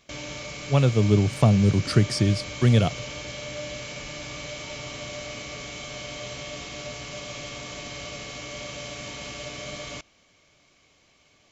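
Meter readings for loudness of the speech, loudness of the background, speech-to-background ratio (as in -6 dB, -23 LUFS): -21.5 LUFS, -35.0 LUFS, 13.5 dB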